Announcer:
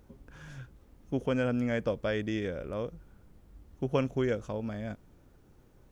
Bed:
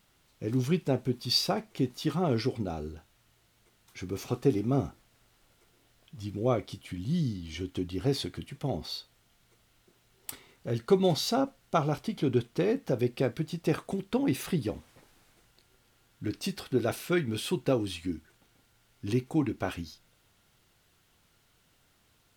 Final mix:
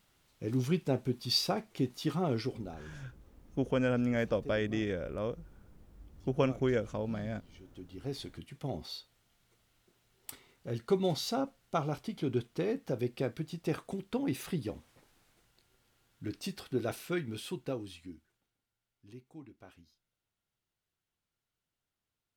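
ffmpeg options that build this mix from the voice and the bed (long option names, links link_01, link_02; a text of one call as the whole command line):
ffmpeg -i stem1.wav -i stem2.wav -filter_complex "[0:a]adelay=2450,volume=-0.5dB[link_01];[1:a]volume=11dB,afade=type=out:start_time=2.17:duration=0.87:silence=0.149624,afade=type=in:start_time=7.68:duration=0.93:silence=0.199526,afade=type=out:start_time=16.91:duration=1.68:silence=0.141254[link_02];[link_01][link_02]amix=inputs=2:normalize=0" out.wav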